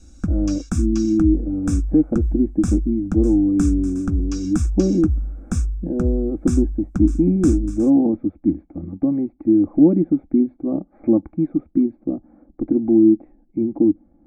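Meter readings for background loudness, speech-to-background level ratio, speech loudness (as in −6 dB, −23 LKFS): −26.0 LKFS, 6.0 dB, −20.0 LKFS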